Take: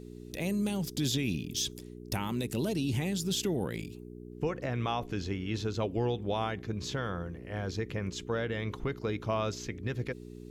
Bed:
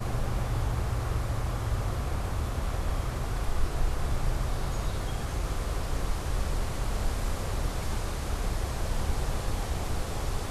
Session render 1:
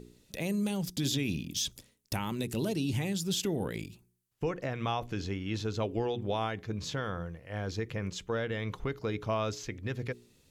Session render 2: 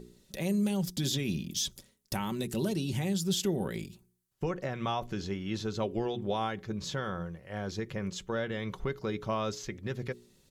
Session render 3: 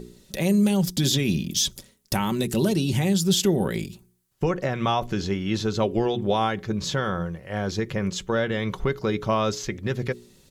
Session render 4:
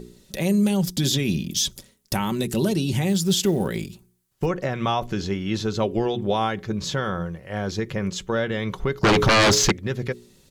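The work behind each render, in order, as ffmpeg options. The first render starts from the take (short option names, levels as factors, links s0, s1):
-af "bandreject=f=60:t=h:w=4,bandreject=f=120:t=h:w=4,bandreject=f=180:t=h:w=4,bandreject=f=240:t=h:w=4,bandreject=f=300:t=h:w=4,bandreject=f=360:t=h:w=4,bandreject=f=420:t=h:w=4"
-af "equalizer=f=2500:w=3.3:g=-4,aecho=1:1:5.3:0.4"
-af "volume=2.82"
-filter_complex "[0:a]asettb=1/sr,asplit=3[s0][s1][s2];[s0]atrim=end=3.084[s3];[s1]atrim=start=3.08:end=4.46,asetpts=PTS-STARTPTS,afade=t=in:d=0.004:c=qsin,afade=t=out:st=1.376:d=0.004:c=qsin,acrusher=bits=8:mode=log:mix=0:aa=0.000001[s4];[s2]atrim=start=4.456[s5];[s3][s4]acrossfade=d=0.004:c1=hsin:c2=qsin[s6];[s6][s5]acrossfade=d=0.004:c1=qsin:c2=hsin,asettb=1/sr,asplit=3[s7][s8][s9];[s7]atrim=end=9.034[s10];[s8]atrim=start=9.03:end=9.72,asetpts=PTS-STARTPTS,afade=t=in:d=0.004:c=qsin,afade=t=out:st=0.686:d=0.004:c=qsin,aeval=exprs='0.237*sin(PI/2*3.98*val(0)/0.237)':c=same[s11];[s9]atrim=start=9.716[s12];[s10][s11]acrossfade=d=0.004:c1=hsin:c2=qsin[s13];[s13][s12]acrossfade=d=0.004:c1=qsin:c2=hsin"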